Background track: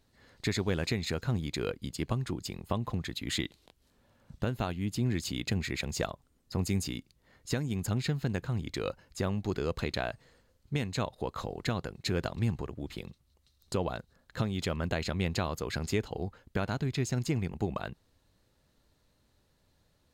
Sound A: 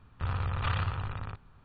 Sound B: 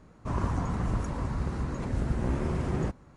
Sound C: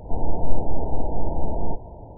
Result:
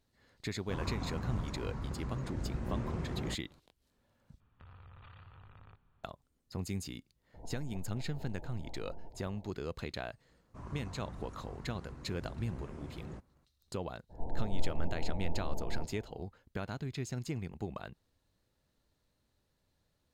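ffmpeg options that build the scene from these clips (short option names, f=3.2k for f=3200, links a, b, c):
-filter_complex "[2:a]asplit=2[a][b];[3:a]asplit=2[c][d];[0:a]volume=-7.5dB[e];[a]lowpass=7.5k[f];[1:a]acompressor=threshold=-38dB:ratio=6:attack=3.2:release=140:knee=1:detection=peak[g];[c]acompressor=threshold=-26dB:ratio=6:attack=3.2:release=140:knee=1:detection=peak[h];[e]asplit=2[i][j];[i]atrim=end=4.404[k];[g]atrim=end=1.64,asetpts=PTS-STARTPTS,volume=-13.5dB[l];[j]atrim=start=6.036[m];[f]atrim=end=3.16,asetpts=PTS-STARTPTS,volume=-8.5dB,afade=t=in:d=0.004:c=hsin,afade=t=out:st=3.156:d=0.004:c=hsin,adelay=440[n];[h]atrim=end=2.17,asetpts=PTS-STARTPTS,volume=-14dB,afade=t=in:d=0.004:c=hsin,afade=t=out:st=2.166:d=0.004:c=hsin,adelay=7340[o];[b]atrim=end=3.16,asetpts=PTS-STARTPTS,volume=-16.5dB,afade=t=in:d=0.004:c=hsin,afade=t=out:st=3.156:d=0.004:c=hsin,adelay=10290[p];[d]atrim=end=2.17,asetpts=PTS-STARTPTS,volume=-13.5dB,afade=t=in:d=0.02,afade=t=out:st=2.15:d=0.02,adelay=14090[q];[k][l]acrossfade=d=0.004:c1=hsin:c2=hsin[r];[r][m]acrossfade=d=0.004:c1=hsin:c2=hsin[s];[s][n][o][p][q]amix=inputs=5:normalize=0"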